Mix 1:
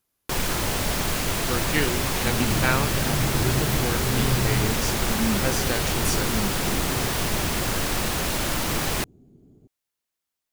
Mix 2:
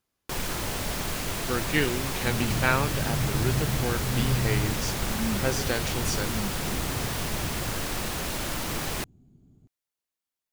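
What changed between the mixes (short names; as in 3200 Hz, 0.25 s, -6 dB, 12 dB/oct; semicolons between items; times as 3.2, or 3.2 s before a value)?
speech: add bell 12000 Hz -11.5 dB 0.83 oct; first sound -5.5 dB; second sound: add bell 440 Hz -13 dB 1.4 oct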